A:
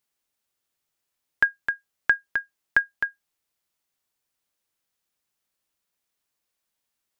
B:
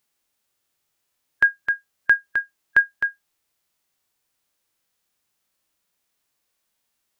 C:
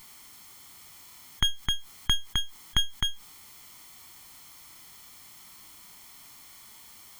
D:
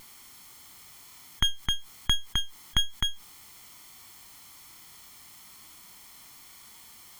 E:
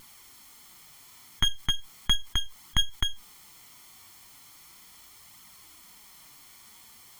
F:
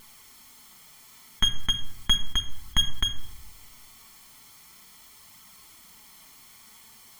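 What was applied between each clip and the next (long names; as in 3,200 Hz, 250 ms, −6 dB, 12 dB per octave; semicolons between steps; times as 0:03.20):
harmonic and percussive parts rebalanced harmonic +9 dB
lower of the sound and its delayed copy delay 0.92 ms; envelope flattener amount 50%; level −4 dB
pitch vibrato 1.1 Hz 11 cents
in parallel at −1.5 dB: output level in coarse steps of 12 dB; on the sum: flanger 0.37 Hz, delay 0.6 ms, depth 9.2 ms, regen −32%
rectangular room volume 3,500 cubic metres, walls furnished, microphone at 1.5 metres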